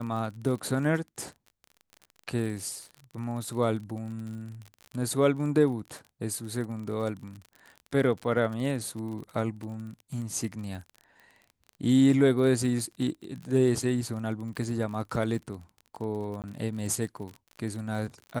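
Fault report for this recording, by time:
crackle 34/s -36 dBFS
16.42–16.44 gap 18 ms

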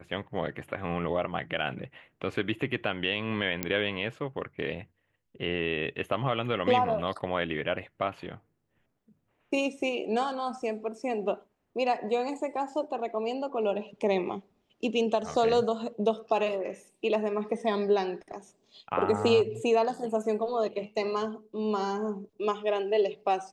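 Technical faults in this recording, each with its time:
3.63 pop -11 dBFS

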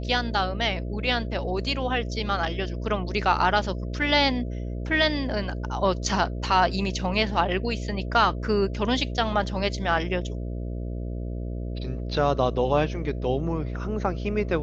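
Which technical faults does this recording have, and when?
buzz 60 Hz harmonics 11 -31 dBFS

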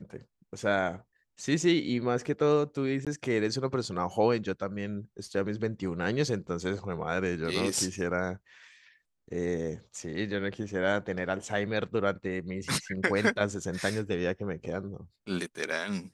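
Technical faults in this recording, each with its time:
3.05–3.07 gap 17 ms

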